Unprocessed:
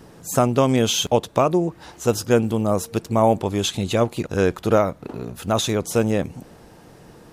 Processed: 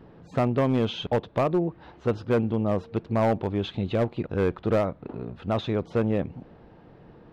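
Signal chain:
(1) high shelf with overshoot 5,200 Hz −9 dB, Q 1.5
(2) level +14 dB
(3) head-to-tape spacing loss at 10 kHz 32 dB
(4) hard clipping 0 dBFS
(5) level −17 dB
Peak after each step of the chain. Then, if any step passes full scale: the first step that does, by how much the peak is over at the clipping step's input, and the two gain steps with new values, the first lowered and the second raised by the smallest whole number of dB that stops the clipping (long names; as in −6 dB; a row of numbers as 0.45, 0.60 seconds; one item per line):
−3.0, +11.0, +9.0, 0.0, −17.0 dBFS
step 2, 9.0 dB
step 2 +5 dB, step 5 −8 dB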